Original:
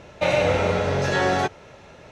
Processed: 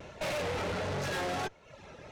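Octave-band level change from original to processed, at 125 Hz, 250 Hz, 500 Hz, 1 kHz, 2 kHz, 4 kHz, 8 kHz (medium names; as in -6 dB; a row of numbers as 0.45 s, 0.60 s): -12.5 dB, -12.0 dB, -13.5 dB, -11.5 dB, -11.5 dB, -8.5 dB, -6.5 dB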